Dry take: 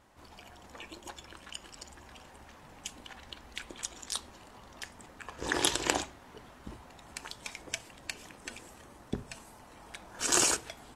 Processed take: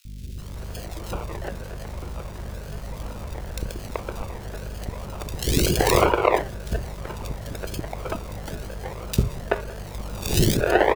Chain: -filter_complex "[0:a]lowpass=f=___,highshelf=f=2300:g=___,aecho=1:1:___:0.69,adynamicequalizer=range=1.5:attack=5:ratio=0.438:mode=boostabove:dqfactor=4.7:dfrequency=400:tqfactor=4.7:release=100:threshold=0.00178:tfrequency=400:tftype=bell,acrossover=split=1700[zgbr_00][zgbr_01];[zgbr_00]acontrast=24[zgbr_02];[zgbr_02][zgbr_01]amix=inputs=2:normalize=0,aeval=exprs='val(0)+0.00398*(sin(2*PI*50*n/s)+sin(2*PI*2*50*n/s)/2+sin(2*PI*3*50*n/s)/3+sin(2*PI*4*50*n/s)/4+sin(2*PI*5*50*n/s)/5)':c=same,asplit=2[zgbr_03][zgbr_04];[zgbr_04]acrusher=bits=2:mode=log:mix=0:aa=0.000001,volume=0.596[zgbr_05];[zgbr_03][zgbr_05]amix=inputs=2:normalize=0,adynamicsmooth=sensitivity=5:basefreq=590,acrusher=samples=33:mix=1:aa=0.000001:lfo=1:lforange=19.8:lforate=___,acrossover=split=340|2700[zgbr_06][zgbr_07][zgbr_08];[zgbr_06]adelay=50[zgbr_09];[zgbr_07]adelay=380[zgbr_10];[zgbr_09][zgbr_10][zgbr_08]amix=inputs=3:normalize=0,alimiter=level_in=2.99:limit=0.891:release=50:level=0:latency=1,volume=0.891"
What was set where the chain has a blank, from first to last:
8400, -8.5, 1.9, 1